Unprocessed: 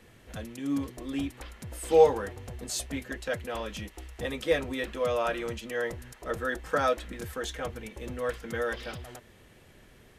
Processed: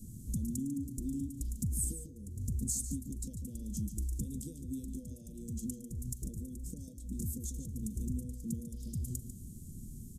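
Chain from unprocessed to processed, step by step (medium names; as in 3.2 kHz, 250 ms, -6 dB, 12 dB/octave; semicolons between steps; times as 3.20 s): compression 12:1, threshold -41 dBFS, peak gain reduction 27.5 dB; elliptic band-stop 230–7200 Hz, stop band 70 dB; echo from a far wall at 25 m, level -9 dB; trim +12 dB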